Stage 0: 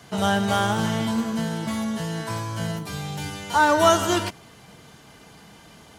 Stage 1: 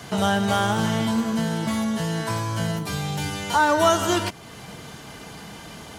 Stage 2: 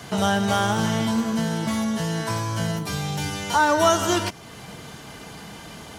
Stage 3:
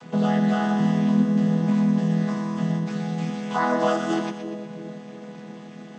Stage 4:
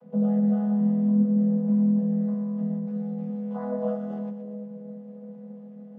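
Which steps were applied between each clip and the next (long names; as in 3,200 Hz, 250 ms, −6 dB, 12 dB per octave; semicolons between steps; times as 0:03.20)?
downward compressor 1.5 to 1, threshold −41 dBFS, peak gain reduction 10.5 dB; level +8.5 dB
dynamic equaliser 5,700 Hz, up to +5 dB, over −51 dBFS, Q 5.9
channel vocoder with a chord as carrier major triad, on E3; echo with a time of its own for lows and highs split 630 Hz, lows 342 ms, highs 121 ms, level −8.5 dB
pair of resonant band-passes 330 Hz, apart 1.3 octaves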